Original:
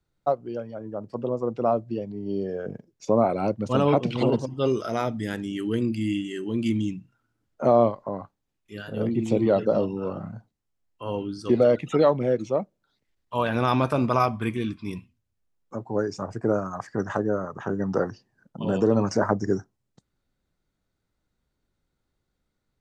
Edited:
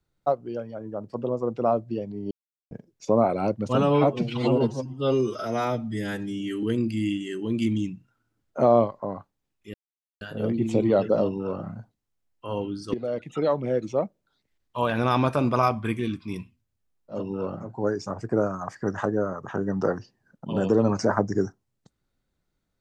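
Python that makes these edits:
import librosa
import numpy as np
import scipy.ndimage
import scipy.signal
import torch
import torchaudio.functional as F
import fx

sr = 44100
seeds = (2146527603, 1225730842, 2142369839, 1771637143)

y = fx.edit(x, sr, fx.silence(start_s=2.31, length_s=0.4),
    fx.stretch_span(start_s=3.75, length_s=1.92, factor=1.5),
    fx.insert_silence(at_s=8.78, length_s=0.47),
    fx.duplicate(start_s=9.83, length_s=0.45, to_s=15.77, crossfade_s=0.24),
    fx.fade_in_from(start_s=11.51, length_s=1.06, floor_db=-15.0), tone=tone)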